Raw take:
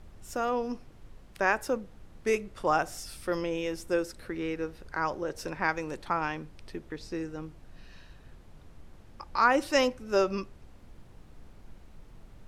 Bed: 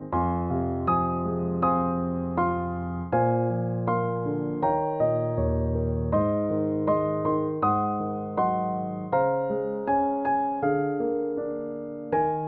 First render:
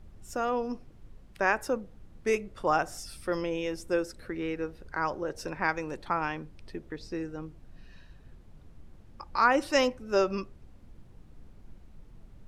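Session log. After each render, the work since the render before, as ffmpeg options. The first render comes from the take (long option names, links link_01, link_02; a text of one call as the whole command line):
ffmpeg -i in.wav -af "afftdn=noise_reduction=6:noise_floor=-53" out.wav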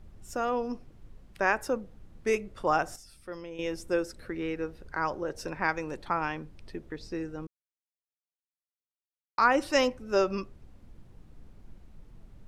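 ffmpeg -i in.wav -filter_complex "[0:a]asplit=5[link_01][link_02][link_03][link_04][link_05];[link_01]atrim=end=2.962[link_06];[link_02]atrim=start=2.958:end=3.592,asetpts=PTS-STARTPTS,volume=-10dB[link_07];[link_03]atrim=start=3.588:end=7.47,asetpts=PTS-STARTPTS,afade=type=out:start_time=3.878:duration=0.004:curve=hsin[link_08];[link_04]atrim=start=7.47:end=9.38,asetpts=PTS-STARTPTS,volume=0[link_09];[link_05]atrim=start=9.38,asetpts=PTS-STARTPTS,afade=type=in:duration=0.004:curve=hsin[link_10];[link_06][link_07]acrossfade=duration=0.004:curve1=hsin:curve2=hsin[link_11];[link_08][link_09][link_10]concat=n=3:v=0:a=1[link_12];[link_11][link_12]acrossfade=duration=0.004:curve1=hsin:curve2=hsin" out.wav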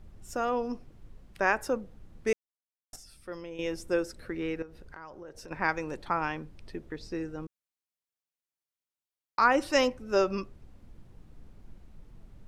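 ffmpeg -i in.wav -filter_complex "[0:a]asettb=1/sr,asplit=3[link_01][link_02][link_03];[link_01]atrim=end=4.624[link_04];[link_02]atrim=start=4.62:end=5.51,asetpts=PTS-STARTPTS,afade=type=in:duration=0.004:curve=qsin,afade=type=out:start_time=0.886:duration=0.004:curve=qsin,acompressor=threshold=-44dB:ratio=4:attack=3.2:release=140:knee=1:detection=peak[link_05];[link_03]atrim=start=5.506[link_06];[link_04][link_05]acrossfade=duration=0.004:curve1=hsin:curve2=qsin[link_07];[link_07][link_06]acrossfade=duration=0.004:curve1=qsin:curve2=hsin,asplit=3[link_08][link_09][link_10];[link_08]atrim=end=2.33,asetpts=PTS-STARTPTS,afade=type=out:start_time=2.326:duration=0.004:curve=hsin[link_11];[link_09]atrim=start=2.33:end=2.93,asetpts=PTS-STARTPTS,volume=0[link_12];[link_10]atrim=start=2.93,asetpts=PTS-STARTPTS,afade=type=in:duration=0.004:curve=hsin[link_13];[link_11][link_12][link_13]concat=n=3:v=0:a=1" out.wav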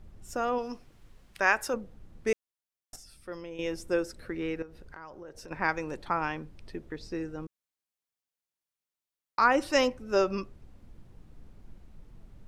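ffmpeg -i in.wav -filter_complex "[0:a]asettb=1/sr,asplit=3[link_01][link_02][link_03];[link_01]atrim=end=0.584[link_04];[link_02]atrim=start=0.58:end=1.74,asetpts=PTS-STARTPTS,afade=type=in:duration=0.004:curve=qsin,afade=type=out:start_time=1.156:duration=0.004:curve=qsin,tiltshelf=frequency=830:gain=-5.5[link_05];[link_03]atrim=start=1.736[link_06];[link_04][link_05]acrossfade=duration=0.004:curve1=hsin:curve2=qsin[link_07];[link_07][link_06]acrossfade=duration=0.004:curve1=qsin:curve2=hsin" out.wav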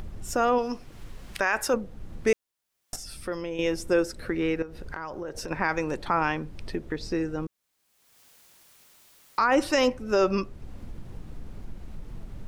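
ffmpeg -i in.wav -filter_complex "[0:a]asplit=2[link_01][link_02];[link_02]acompressor=mode=upward:threshold=-31dB:ratio=2.5,volume=1dB[link_03];[link_01][link_03]amix=inputs=2:normalize=0,alimiter=limit=-12.5dB:level=0:latency=1:release=25" out.wav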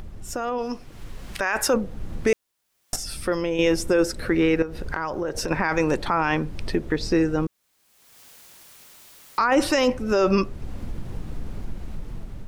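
ffmpeg -i in.wav -af "alimiter=limit=-19dB:level=0:latency=1:release=10,dynaudnorm=framelen=460:gausssize=5:maxgain=8dB" out.wav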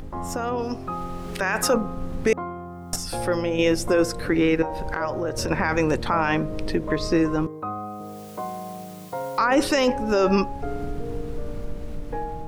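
ffmpeg -i in.wav -i bed.wav -filter_complex "[1:a]volume=-7.5dB[link_01];[0:a][link_01]amix=inputs=2:normalize=0" out.wav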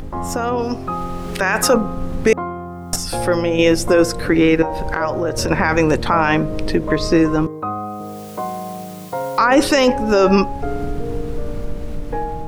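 ffmpeg -i in.wav -af "volume=6.5dB" out.wav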